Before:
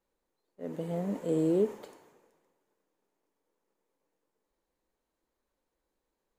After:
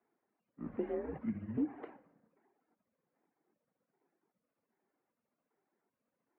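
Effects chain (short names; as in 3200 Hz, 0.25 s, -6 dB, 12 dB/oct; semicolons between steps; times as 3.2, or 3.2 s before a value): trilling pitch shifter -6 st, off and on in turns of 0.393 s; compressor 4:1, threshold -33 dBFS, peak gain reduction 9.5 dB; reverb removal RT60 0.89 s; on a send at -15 dB: reverb RT60 1.0 s, pre-delay 4 ms; on the sum: mistuned SSB -130 Hz 350–2400 Hz; gain +4.5 dB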